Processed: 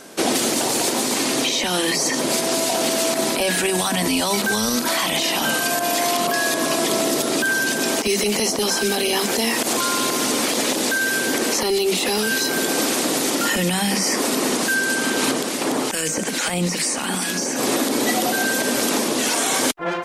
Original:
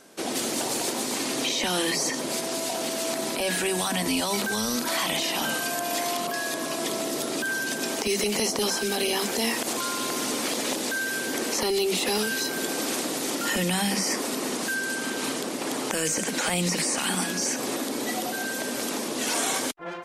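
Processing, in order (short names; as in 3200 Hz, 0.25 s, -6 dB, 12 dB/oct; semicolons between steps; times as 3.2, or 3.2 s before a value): limiter -19 dBFS, peak gain reduction 10.5 dB; vocal rider 0.5 s; 15.31–17.56 harmonic tremolo 2.3 Hz, depth 50%, crossover 1400 Hz; gain +8.5 dB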